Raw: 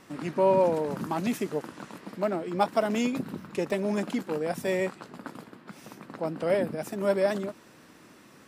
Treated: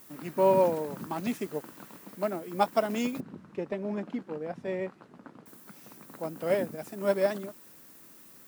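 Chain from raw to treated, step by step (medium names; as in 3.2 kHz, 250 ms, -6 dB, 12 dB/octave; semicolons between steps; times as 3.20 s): added noise violet -47 dBFS; 3.20–5.46 s: tape spacing loss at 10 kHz 25 dB; upward expansion 1.5:1, over -33 dBFS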